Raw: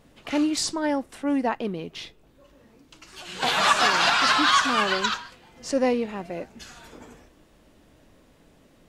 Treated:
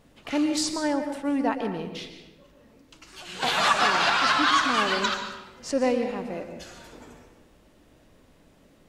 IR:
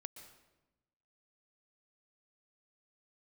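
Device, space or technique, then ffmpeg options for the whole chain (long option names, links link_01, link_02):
bathroom: -filter_complex "[1:a]atrim=start_sample=2205[link_01];[0:a][link_01]afir=irnorm=-1:irlink=0,asettb=1/sr,asplit=3[link_02][link_03][link_04];[link_02]atrim=end=3.684[link_05];[link_03]atrim=start=3.68:end=4.74,asetpts=PTS-STARTPTS,afade=type=in:duration=0.004:curve=qsin,afade=type=out:start_time=1.056:duration=0.004:curve=qsin,highshelf=frequency=4900:gain=-6[link_06];[link_04]atrim=start=4.736[link_07];[link_05][link_06]acrossfade=duration=0.004:curve1=hsin:curve2=qsin[link_08];[link_08][link_07]acrossfade=duration=0.004:curve1=qsin:curve2=hsin,volume=4dB"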